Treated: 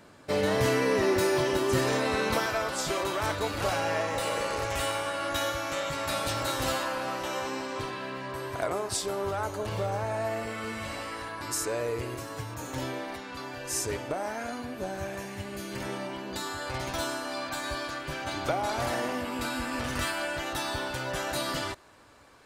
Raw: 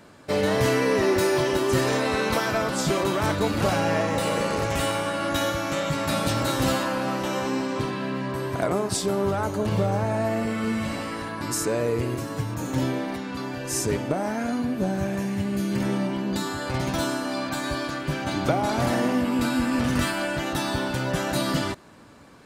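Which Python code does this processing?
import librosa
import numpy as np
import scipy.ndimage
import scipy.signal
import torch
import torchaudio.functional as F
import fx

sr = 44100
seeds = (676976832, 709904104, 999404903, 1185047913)

y = fx.peak_eq(x, sr, hz=190.0, db=fx.steps((0.0, -2.0), (2.46, -13.5)), octaves=1.4)
y = F.gain(torch.from_numpy(y), -3.0).numpy()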